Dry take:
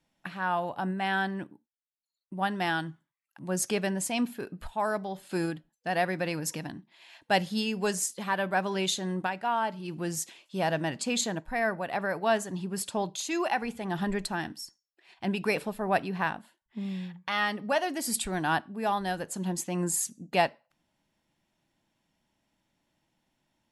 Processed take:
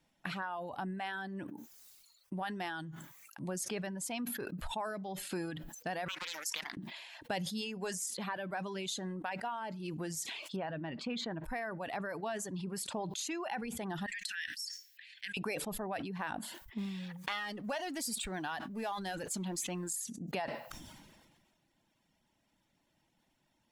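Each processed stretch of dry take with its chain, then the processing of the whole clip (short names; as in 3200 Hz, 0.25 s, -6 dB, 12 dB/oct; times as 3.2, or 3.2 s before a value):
6.08–6.77 HPF 1300 Hz + Doppler distortion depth 0.39 ms
10.56–11.44 air absorption 330 m + doubler 13 ms -14 dB
14.06–15.37 elliptic high-pass 1700 Hz + high shelf 11000 Hz -6 dB
16.78–19.93 G.711 law mismatch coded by mu + bell 5000 Hz +5 dB 2.8 oct
whole clip: compressor 6:1, threshold -38 dBFS; reverb removal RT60 0.72 s; sustainer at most 35 dB/s; gain +1.5 dB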